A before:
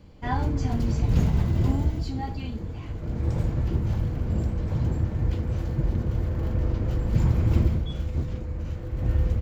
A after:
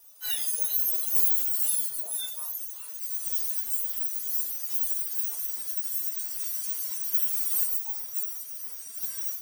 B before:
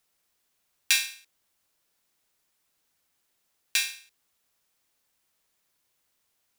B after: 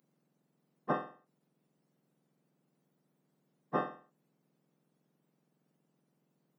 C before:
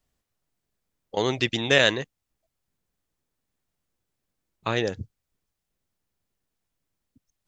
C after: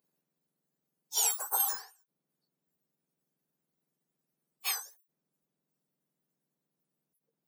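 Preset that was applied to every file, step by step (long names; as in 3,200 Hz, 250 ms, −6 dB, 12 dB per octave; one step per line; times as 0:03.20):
frequency axis turned over on the octave scale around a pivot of 1,700 Hz
RIAA equalisation recording
every ending faded ahead of time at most 140 dB per second
level −6 dB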